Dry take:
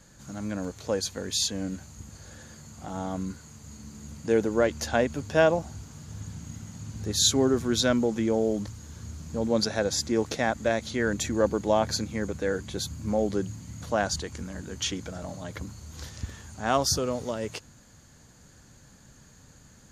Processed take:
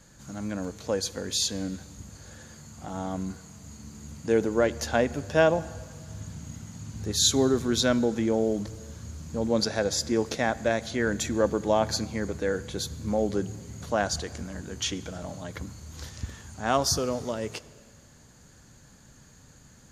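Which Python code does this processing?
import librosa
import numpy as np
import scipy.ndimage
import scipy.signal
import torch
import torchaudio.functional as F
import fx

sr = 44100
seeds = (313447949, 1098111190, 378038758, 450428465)

y = fx.rev_plate(x, sr, seeds[0], rt60_s=1.9, hf_ratio=0.8, predelay_ms=0, drr_db=17.0)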